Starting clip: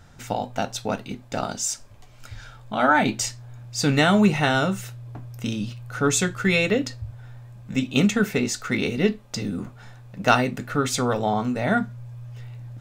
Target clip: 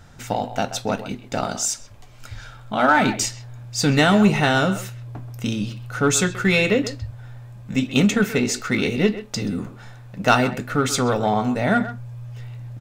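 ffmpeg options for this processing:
ffmpeg -i in.wav -filter_complex "[0:a]asplit=2[link_01][link_02];[link_02]volume=18.5dB,asoftclip=hard,volume=-18.5dB,volume=-7.5dB[link_03];[link_01][link_03]amix=inputs=2:normalize=0,asplit=2[link_04][link_05];[link_05]adelay=130,highpass=300,lowpass=3400,asoftclip=type=hard:threshold=-11dB,volume=-12dB[link_06];[link_04][link_06]amix=inputs=2:normalize=0" out.wav

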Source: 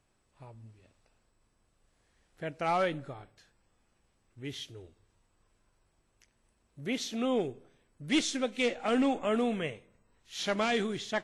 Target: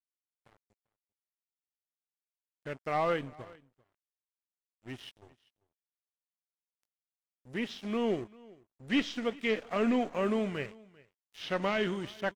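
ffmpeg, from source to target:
ffmpeg -i in.wav -filter_complex "[0:a]asetrate=40131,aresample=44100,aeval=exprs='sgn(val(0))*max(abs(val(0))-0.00531,0)':channel_layout=same,acrossover=split=4100[link_01][link_02];[link_02]acompressor=threshold=-58dB:ratio=4:attack=1:release=60[link_03];[link_01][link_03]amix=inputs=2:normalize=0,aecho=1:1:393:0.0668" out.wav

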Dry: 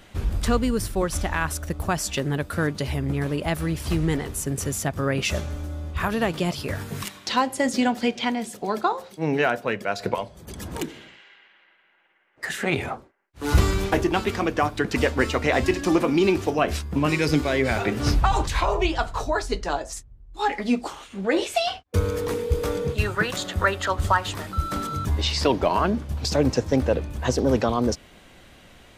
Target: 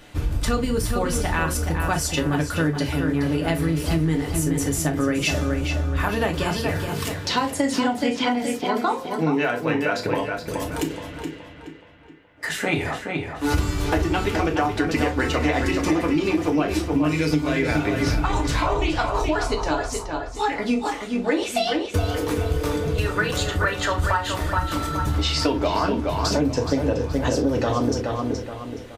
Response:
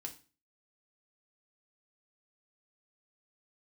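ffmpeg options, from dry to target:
-filter_complex "[0:a]asplit=2[link_01][link_02];[link_02]adelay=423,lowpass=frequency=4000:poles=1,volume=-6dB,asplit=2[link_03][link_04];[link_04]adelay=423,lowpass=frequency=4000:poles=1,volume=0.4,asplit=2[link_05][link_06];[link_06]adelay=423,lowpass=frequency=4000:poles=1,volume=0.4,asplit=2[link_07][link_08];[link_08]adelay=423,lowpass=frequency=4000:poles=1,volume=0.4,asplit=2[link_09][link_10];[link_10]adelay=423,lowpass=frequency=4000:poles=1,volume=0.4[link_11];[link_01][link_03][link_05][link_07][link_09][link_11]amix=inputs=6:normalize=0[link_12];[1:a]atrim=start_sample=2205,atrim=end_sample=3087[link_13];[link_12][link_13]afir=irnorm=-1:irlink=0,acompressor=threshold=-24dB:ratio=6,volume=6.5dB"

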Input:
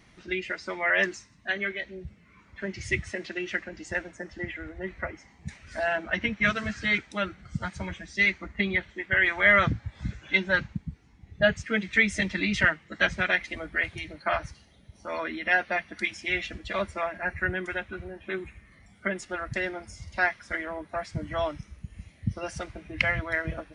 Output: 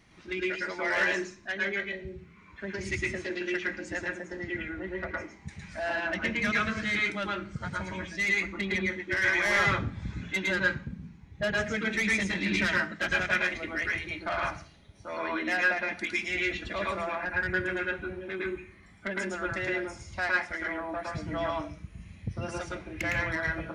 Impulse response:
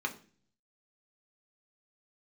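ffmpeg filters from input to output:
-filter_complex "[0:a]asoftclip=type=tanh:threshold=-20dB,asplit=2[link_01][link_02];[1:a]atrim=start_sample=2205,adelay=109[link_03];[link_02][link_03]afir=irnorm=-1:irlink=0,volume=-1.5dB[link_04];[link_01][link_04]amix=inputs=2:normalize=0,volume=-3.5dB"

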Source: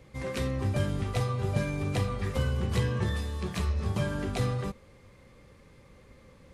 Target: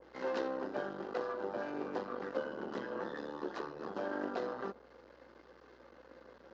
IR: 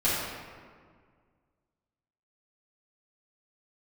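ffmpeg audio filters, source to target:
-af "acompressor=threshold=-32dB:ratio=2.5,flanger=delay=2.4:depth=2.8:regen=-43:speed=0.54:shape=triangular,aresample=16000,aeval=exprs='max(val(0),0)':channel_layout=same,aresample=44100,highpass=frequency=250:width=0.5412,highpass=frequency=250:width=1.3066,equalizer=frequency=340:width_type=q:width=4:gain=4,equalizer=frequency=510:width_type=q:width=4:gain=5,equalizer=frequency=880:width_type=q:width=4:gain=4,equalizer=frequency=1500:width_type=q:width=4:gain=8,equalizer=frequency=2300:width_type=q:width=4:gain=-10,equalizer=frequency=3500:width_type=q:width=4:gain=-4,lowpass=frequency=5100:width=0.5412,lowpass=frequency=5100:width=1.3066,aeval=exprs='val(0)+0.000141*(sin(2*PI*60*n/s)+sin(2*PI*2*60*n/s)/2+sin(2*PI*3*60*n/s)/3+sin(2*PI*4*60*n/s)/4+sin(2*PI*5*60*n/s)/5)':channel_layout=same,adynamicequalizer=threshold=0.00126:dfrequency=1500:dqfactor=0.7:tfrequency=1500:tqfactor=0.7:attack=5:release=100:ratio=0.375:range=3:mode=cutabove:tftype=highshelf,volume=6dB"

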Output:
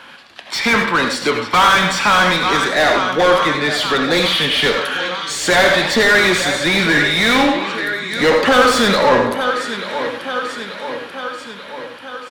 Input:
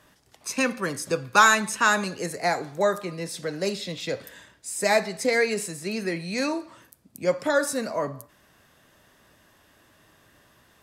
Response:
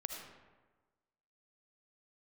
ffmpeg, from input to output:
-filter_complex "[0:a]equalizer=frequency=125:width_type=o:width=1:gain=-5,equalizer=frequency=250:width_type=o:width=1:gain=4,equalizer=frequency=500:width_type=o:width=1:gain=-4,equalizer=frequency=2000:width_type=o:width=1:gain=4,equalizer=frequency=4000:width_type=o:width=1:gain=10,equalizer=frequency=8000:width_type=o:width=1:gain=-5,dynaudnorm=framelen=220:gausssize=17:maxgain=9.5dB,aecho=1:1:781|1562|2343|3124|3905:0.112|0.0651|0.0377|0.0219|0.0127,flanger=delay=8.2:depth=8.2:regen=-86:speed=1.9:shape=sinusoidal,asplit=2[link_01][link_02];[link_02]highpass=frequency=720:poles=1,volume=29dB,asoftclip=type=tanh:threshold=-6dB[link_03];[link_01][link_03]amix=inputs=2:normalize=0,lowpass=frequency=2300:poles=1,volume=-6dB[link_04];[1:a]atrim=start_sample=2205,atrim=end_sample=4410[link_05];[link_04][link_05]afir=irnorm=-1:irlink=0,asetrate=38808,aresample=44100,volume=4.5dB"

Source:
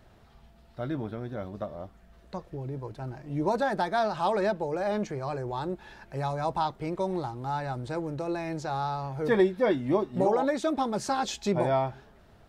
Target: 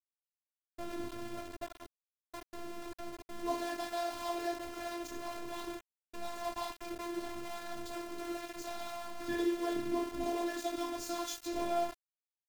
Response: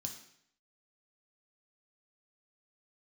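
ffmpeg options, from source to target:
-filter_complex "[0:a]adynamicequalizer=threshold=0.0158:dfrequency=610:dqfactor=1.5:tfrequency=610:tqfactor=1.5:attack=5:release=100:ratio=0.375:range=2.5:mode=cutabove:tftype=bell[link_01];[1:a]atrim=start_sample=2205,afade=type=out:start_time=0.4:duration=0.01,atrim=end_sample=18081[link_02];[link_01][link_02]afir=irnorm=-1:irlink=0,aeval=exprs='val(0)*gte(abs(val(0)),0.0211)':channel_layout=same,afftfilt=real='hypot(re,im)*cos(PI*b)':imag='0':win_size=512:overlap=0.75,volume=-2dB"

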